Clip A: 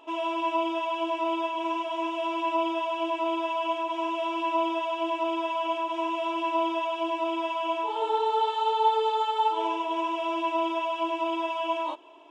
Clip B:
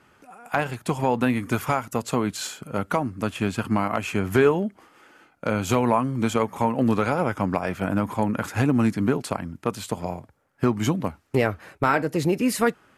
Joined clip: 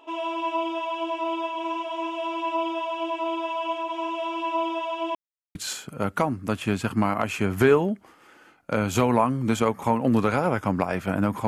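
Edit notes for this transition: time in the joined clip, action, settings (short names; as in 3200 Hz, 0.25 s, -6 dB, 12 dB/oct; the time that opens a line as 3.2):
clip A
5.15–5.55 mute
5.55 switch to clip B from 2.29 s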